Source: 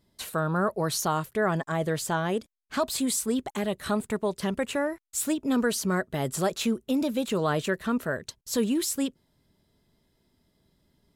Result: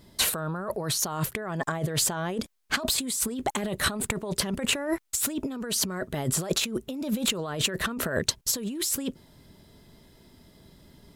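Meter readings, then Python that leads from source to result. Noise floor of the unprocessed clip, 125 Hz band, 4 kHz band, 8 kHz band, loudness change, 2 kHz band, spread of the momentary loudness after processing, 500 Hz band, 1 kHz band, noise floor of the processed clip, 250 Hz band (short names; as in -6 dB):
-71 dBFS, -0.5 dB, +7.0 dB, +5.0 dB, 0.0 dB, +1.0 dB, 6 LU, -4.5 dB, -3.5 dB, -57 dBFS, -4.0 dB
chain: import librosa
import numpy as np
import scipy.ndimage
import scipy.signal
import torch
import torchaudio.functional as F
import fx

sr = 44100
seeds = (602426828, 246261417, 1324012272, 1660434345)

y = fx.over_compress(x, sr, threshold_db=-36.0, ratio=-1.0)
y = y * 10.0 ** (6.5 / 20.0)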